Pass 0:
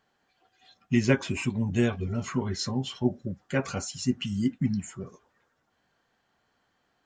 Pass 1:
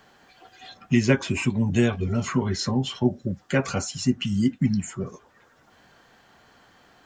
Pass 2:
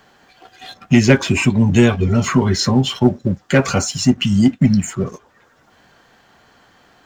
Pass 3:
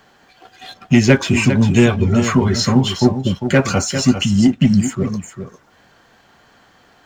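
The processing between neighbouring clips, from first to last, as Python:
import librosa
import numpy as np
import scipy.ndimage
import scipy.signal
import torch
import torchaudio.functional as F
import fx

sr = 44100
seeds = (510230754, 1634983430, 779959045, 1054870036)

y1 = fx.band_squash(x, sr, depth_pct=40)
y1 = y1 * librosa.db_to_amplitude(4.5)
y2 = fx.leveller(y1, sr, passes=1)
y2 = y2 * librosa.db_to_amplitude(6.0)
y3 = y2 + 10.0 ** (-9.0 / 20.0) * np.pad(y2, (int(400 * sr / 1000.0), 0))[:len(y2)]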